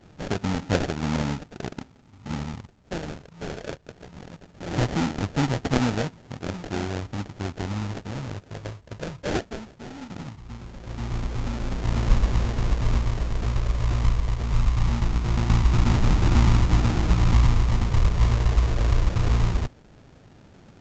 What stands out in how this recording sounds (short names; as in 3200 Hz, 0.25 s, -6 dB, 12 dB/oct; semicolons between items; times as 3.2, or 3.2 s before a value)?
a buzz of ramps at a fixed pitch in blocks of 8 samples; phasing stages 2, 0.2 Hz, lowest notch 280–1200 Hz; aliases and images of a low sample rate 1100 Hz, jitter 20%; A-law